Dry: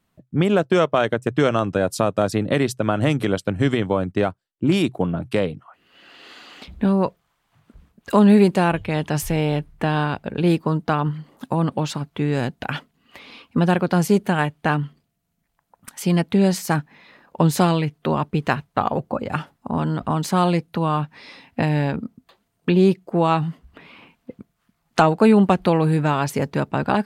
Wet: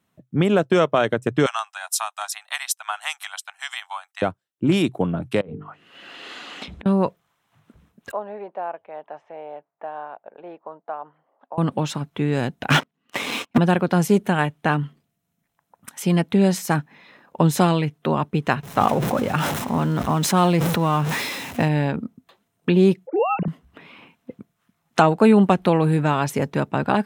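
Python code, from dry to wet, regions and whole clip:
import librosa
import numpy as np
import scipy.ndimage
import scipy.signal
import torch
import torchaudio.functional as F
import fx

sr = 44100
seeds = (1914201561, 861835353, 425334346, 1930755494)

y = fx.chain(x, sr, fx.steep_highpass(hz=750.0, slope=72),
    fx.high_shelf(hz=4200.0, db=12.0),
    fx.upward_expand(threshold_db=-35.0, expansion=1.5), at=(1.46, 4.22))
y = fx.chain(y, sr, fx.hum_notches(base_hz=50, count=9),
    fx.env_lowpass_down(base_hz=1400.0, full_db=-25.0),
    fx.over_compress(threshold_db=-35.0, ratio=-1.0), at=(5.41, 6.86))
y = fx.chain(y, sr, fx.ladder_bandpass(hz=780.0, resonance_pct=50),
    fx.air_absorb(metres=97.0), at=(8.11, 11.58))
y = fx.chain(y, sr, fx.highpass(hz=130.0, slope=12),
    fx.high_shelf(hz=7000.0, db=-11.0),
    fx.leveller(passes=5), at=(12.7, 13.58))
y = fx.chain(y, sr, fx.zero_step(step_db=-31.5),
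    fx.sustainer(db_per_s=29.0), at=(18.63, 21.68))
y = fx.chain(y, sr, fx.sine_speech(),
    fx.peak_eq(hz=1000.0, db=-9.5, octaves=0.64), at=(23.07, 23.48))
y = scipy.signal.sosfilt(scipy.signal.butter(2, 90.0, 'highpass', fs=sr, output='sos'), y)
y = fx.notch(y, sr, hz=4600.0, q=8.9)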